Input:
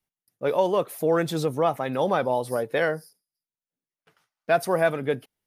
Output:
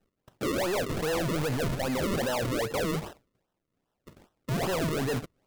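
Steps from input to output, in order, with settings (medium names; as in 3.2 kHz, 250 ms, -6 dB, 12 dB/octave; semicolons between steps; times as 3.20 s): in parallel at +2 dB: compressor with a negative ratio -34 dBFS, ratio -1; on the sum: decimation with a swept rate 38×, swing 100% 2.5 Hz; saturation -26 dBFS, distortion -7 dB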